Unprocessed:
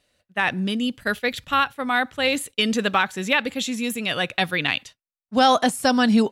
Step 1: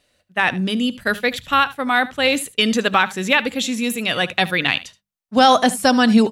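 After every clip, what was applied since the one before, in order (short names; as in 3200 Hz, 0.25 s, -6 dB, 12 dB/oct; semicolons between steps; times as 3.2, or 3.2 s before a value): notches 50/100/150/200 Hz; echo 75 ms -18 dB; gain +4 dB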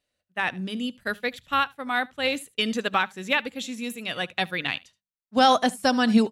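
upward expander 1.5:1, over -33 dBFS; gain -4.5 dB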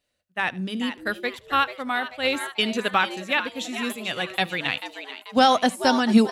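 on a send: frequency-shifting echo 0.438 s, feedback 51%, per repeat +130 Hz, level -11.5 dB; on the sum: noise-modulated level, depth 55%; gain +4 dB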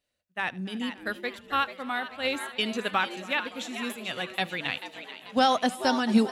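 warbling echo 0.284 s, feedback 75%, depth 71 cents, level -21.5 dB; gain -5 dB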